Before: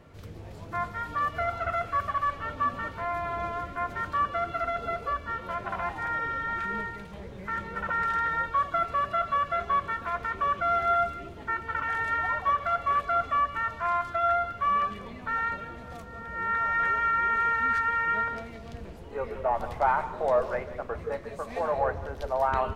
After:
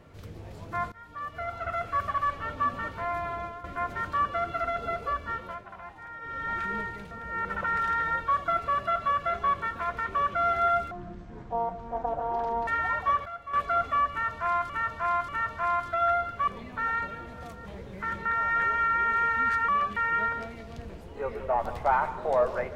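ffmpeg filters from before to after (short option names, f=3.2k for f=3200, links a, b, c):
-filter_complex "[0:a]asplit=18[a][b][c][d][e][f][g][h][i][j][k][l][m][n][o][p][q][r];[a]atrim=end=0.92,asetpts=PTS-STARTPTS,afade=t=out:st=0.916:d=0.004:c=hsin:silence=0.125893[s];[b]atrim=start=0.92:end=3.64,asetpts=PTS-STARTPTS,afade=t=in:d=1.12:silence=0.125893,afade=t=out:st=2.15:d=0.57:c=qsin:silence=0.237137[t];[c]atrim=start=3.64:end=5.65,asetpts=PTS-STARTPTS,afade=t=in:d=0.004:c=hsin:silence=0.237137,afade=t=out:st=1.7:d=0.31:silence=0.251189[u];[d]atrim=start=5.65:end=6.2,asetpts=PTS-STARTPTS,volume=-12dB[v];[e]atrim=start=6.2:end=7.112,asetpts=PTS-STARTPTS,afade=t=in:d=0.31:silence=0.251189[w];[f]atrim=start=16.148:end=16.492[x];[g]atrim=start=7.708:end=11.174[y];[h]atrim=start=11.17:end=12.07,asetpts=PTS-STARTPTS,asetrate=22491,aresample=44100[z];[i]atrim=start=12.066:end=12.652[aa];[j]atrim=start=12.648:end=12.932,asetpts=PTS-STARTPTS,volume=-12dB[ab];[k]atrim=start=12.928:end=14.092[ac];[l]atrim=start=13.498:end=14.092[ad];[m]atrim=start=13.498:end=14.692[ae];[n]atrim=start=14.968:end=16.152[af];[o]atrim=start=7.108:end=7.712[ag];[p]atrim=start=16.488:end=17.922[ah];[q]atrim=start=14.688:end=14.972[ai];[r]atrim=start=17.918[aj];[s][t][u][v][w]concat=n=5:v=0:a=1[ak];[ak][x]acrossfade=d=0.004:c1=hsin:c2=hsin[al];[al][y]acrossfade=d=0.004:c1=hsin:c2=hsin[am];[am][z]acrossfade=d=0.004:c1=hsin:c2=hsin[an];[an][aa]acrossfade=d=0.004:c1=hsin:c2=hsin[ao];[ao][ab]acrossfade=d=0.004:c1=hsin:c2=hsin[ap];[ap][ac]acrossfade=d=0.004:c1=hsin:c2=hsin[aq];[aq][ad]acrossfade=d=0.004:c1=hsin:c2=hsin[ar];[ar][ae]acrossfade=d=0.004:c1=hsin:c2=hsin[as];[as][af]acrossfade=d=0.004:c1=hsin:c2=hsin[at];[at][ag]acrossfade=d=0.004:c1=hsin:c2=hsin[au];[au][ah]acrossfade=d=0.004:c1=hsin:c2=hsin[av];[av][ai]acrossfade=d=0.004:c1=hsin:c2=hsin[aw];[aw][aj]acrossfade=d=0.004:c1=hsin:c2=hsin"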